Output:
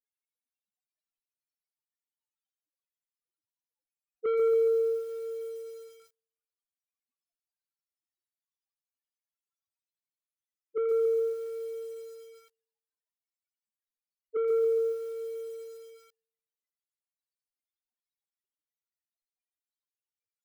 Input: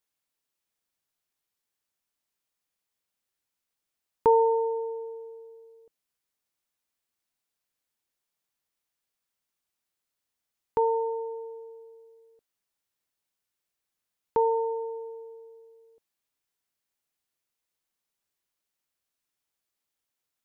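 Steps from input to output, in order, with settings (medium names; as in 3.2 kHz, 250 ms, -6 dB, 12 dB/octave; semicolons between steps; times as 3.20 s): loudest bins only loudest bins 1; in parallel at -9 dB: hard clipper -29 dBFS, distortion -10 dB; on the sum: low-pass that closes with the level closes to 410 Hz, closed at -31.5 dBFS; saturation -31 dBFS, distortion -12 dB; on a send: feedback echo behind a high-pass 82 ms, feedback 54%, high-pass 1.4 kHz, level -4 dB; on the sum: bit-crushed delay 139 ms, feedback 55%, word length 10-bit, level -5.5 dB; trim +6 dB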